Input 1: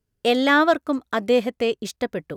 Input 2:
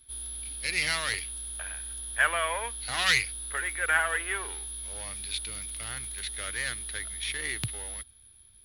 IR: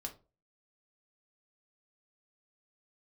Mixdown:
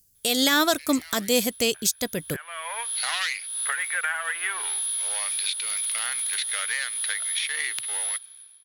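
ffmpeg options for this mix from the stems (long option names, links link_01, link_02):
-filter_complex "[0:a]bass=frequency=250:gain=7,treble=frequency=4000:gain=14,crystalizer=i=4.5:c=0,volume=-1.5dB[link_01];[1:a]highpass=810,acompressor=threshold=-37dB:ratio=8,adelay=150,volume=-3.5dB[link_02];[link_01][link_02]amix=inputs=2:normalize=0,dynaudnorm=framelen=100:gausssize=9:maxgain=16dB,alimiter=limit=-10dB:level=0:latency=1:release=169"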